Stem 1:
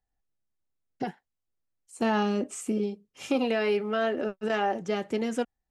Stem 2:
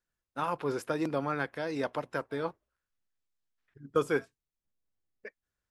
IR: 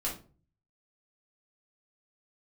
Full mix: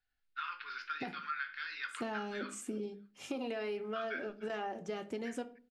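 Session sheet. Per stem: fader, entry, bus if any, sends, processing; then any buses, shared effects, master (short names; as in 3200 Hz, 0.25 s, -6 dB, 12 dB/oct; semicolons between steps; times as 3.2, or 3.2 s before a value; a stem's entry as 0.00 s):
-9.0 dB, 0.00 s, send -12.5 dB, no echo send, dry
-1.5 dB, 0.00 s, send -3 dB, echo send -19 dB, elliptic band-pass 1400–4600 Hz, stop band 40 dB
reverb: on, RT60 0.40 s, pre-delay 3 ms
echo: feedback echo 0.3 s, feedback 21%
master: compressor, threshold -35 dBFS, peak gain reduction 8 dB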